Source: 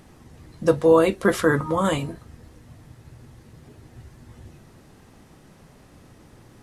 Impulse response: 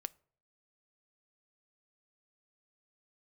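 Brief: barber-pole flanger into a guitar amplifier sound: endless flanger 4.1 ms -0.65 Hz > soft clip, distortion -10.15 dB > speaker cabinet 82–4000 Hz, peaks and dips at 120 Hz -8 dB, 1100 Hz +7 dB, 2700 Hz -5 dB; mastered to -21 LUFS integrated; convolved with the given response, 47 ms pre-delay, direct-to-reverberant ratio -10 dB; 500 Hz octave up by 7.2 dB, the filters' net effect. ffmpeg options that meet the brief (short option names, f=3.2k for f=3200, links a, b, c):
-filter_complex "[0:a]equalizer=f=500:t=o:g=7.5,asplit=2[a][b];[1:a]atrim=start_sample=2205,adelay=47[c];[b][c]afir=irnorm=-1:irlink=0,volume=12.5dB[d];[a][d]amix=inputs=2:normalize=0,asplit=2[e][f];[f]adelay=4.1,afreqshift=-0.65[g];[e][g]amix=inputs=2:normalize=1,asoftclip=threshold=-3.5dB,highpass=82,equalizer=f=120:t=q:w=4:g=-8,equalizer=f=1.1k:t=q:w=4:g=7,equalizer=f=2.7k:t=q:w=4:g=-5,lowpass=f=4k:w=0.5412,lowpass=f=4k:w=1.3066,volume=-9.5dB"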